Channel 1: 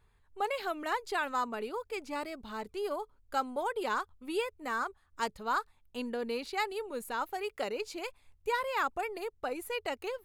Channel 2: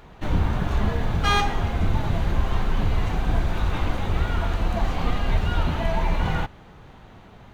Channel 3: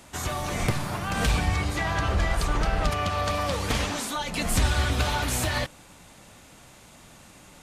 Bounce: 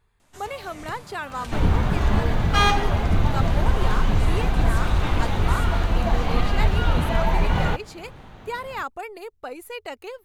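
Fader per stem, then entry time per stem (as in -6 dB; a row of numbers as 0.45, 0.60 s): +1.0, +2.5, -13.5 dB; 0.00, 1.30, 0.20 s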